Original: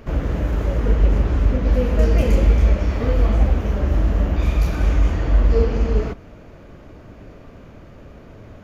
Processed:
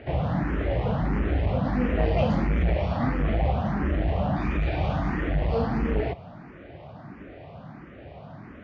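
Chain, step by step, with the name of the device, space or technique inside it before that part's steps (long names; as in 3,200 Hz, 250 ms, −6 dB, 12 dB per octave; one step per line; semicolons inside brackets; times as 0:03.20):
barber-pole phaser into a guitar amplifier (frequency shifter mixed with the dry sound +1.5 Hz; soft clipping −12.5 dBFS, distortion −16 dB; loudspeaker in its box 86–4,100 Hz, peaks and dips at 150 Hz +5 dB, 450 Hz −4 dB, 750 Hz +8 dB, 1,900 Hz +4 dB)
level +2 dB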